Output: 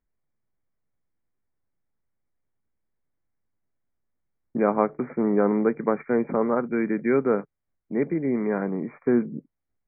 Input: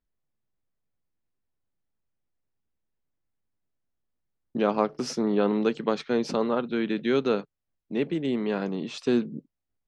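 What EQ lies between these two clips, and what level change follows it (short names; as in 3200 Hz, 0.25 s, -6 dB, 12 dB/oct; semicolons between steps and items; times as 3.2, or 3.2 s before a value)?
brick-wall FIR low-pass 2400 Hz; +2.5 dB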